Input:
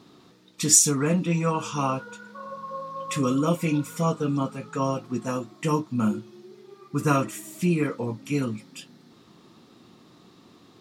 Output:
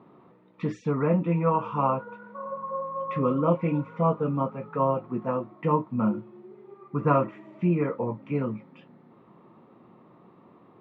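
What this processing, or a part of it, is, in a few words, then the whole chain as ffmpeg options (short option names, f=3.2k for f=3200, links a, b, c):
bass cabinet: -af "highpass=66,equalizer=f=87:t=q:w=4:g=-10,equalizer=f=280:t=q:w=4:g=-4,equalizer=f=560:t=q:w=4:g=5,equalizer=f=960:t=q:w=4:g=5,equalizer=f=1.6k:t=q:w=4:g=-7,lowpass=f=2k:w=0.5412,lowpass=f=2k:w=1.3066"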